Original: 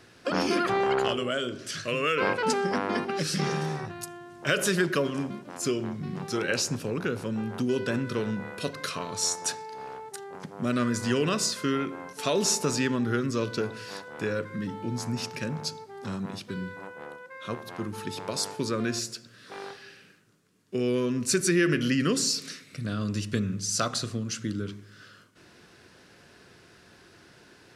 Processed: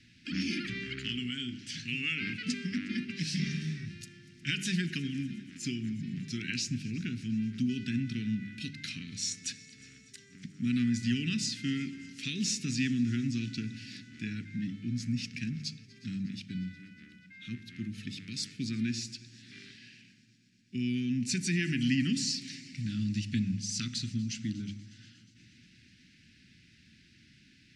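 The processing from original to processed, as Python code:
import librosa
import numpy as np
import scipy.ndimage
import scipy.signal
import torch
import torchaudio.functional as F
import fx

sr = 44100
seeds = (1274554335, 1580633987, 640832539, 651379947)

y = scipy.signal.sosfilt(scipy.signal.ellip(3, 1.0, 60, [250.0, 2100.0], 'bandstop', fs=sr, output='sos'), x)
y = fx.air_absorb(y, sr, metres=94.0)
y = fx.hum_notches(y, sr, base_hz=50, count=4)
y = fx.echo_heads(y, sr, ms=120, heads='second and third', feedback_pct=65, wet_db=-23)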